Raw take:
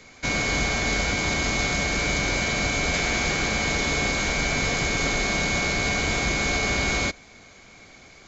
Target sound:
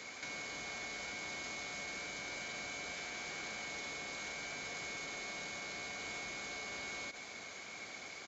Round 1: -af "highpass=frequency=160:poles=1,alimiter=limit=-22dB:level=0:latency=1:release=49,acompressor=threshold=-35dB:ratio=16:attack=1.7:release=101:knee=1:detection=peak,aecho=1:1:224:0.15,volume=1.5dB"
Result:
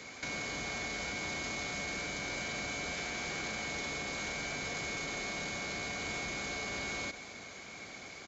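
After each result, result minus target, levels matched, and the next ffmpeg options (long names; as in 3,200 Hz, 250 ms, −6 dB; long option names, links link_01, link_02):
125 Hz band +6.5 dB; downward compressor: peak gain reduction −5.5 dB
-af "highpass=frequency=460:poles=1,alimiter=limit=-22dB:level=0:latency=1:release=49,acompressor=threshold=-35dB:ratio=16:attack=1.7:release=101:knee=1:detection=peak,aecho=1:1:224:0.15,volume=1.5dB"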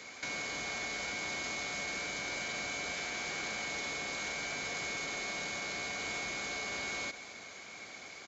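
downward compressor: peak gain reduction −5.5 dB
-af "highpass=frequency=460:poles=1,alimiter=limit=-22dB:level=0:latency=1:release=49,acompressor=threshold=-41dB:ratio=16:attack=1.7:release=101:knee=1:detection=peak,aecho=1:1:224:0.15,volume=1.5dB"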